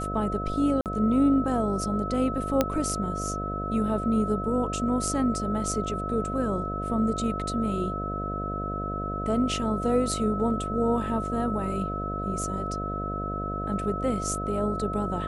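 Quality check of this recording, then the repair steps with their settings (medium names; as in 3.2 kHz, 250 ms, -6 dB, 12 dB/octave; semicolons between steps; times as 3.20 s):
buzz 50 Hz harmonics 14 -33 dBFS
whine 1.3 kHz -32 dBFS
0.81–0.86 s: dropout 48 ms
2.61 s: pop -8 dBFS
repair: de-click; de-hum 50 Hz, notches 14; band-stop 1.3 kHz, Q 30; interpolate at 0.81 s, 48 ms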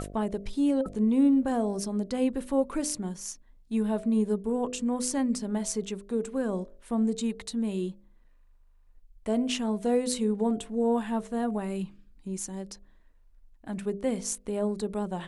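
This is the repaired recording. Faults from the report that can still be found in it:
nothing left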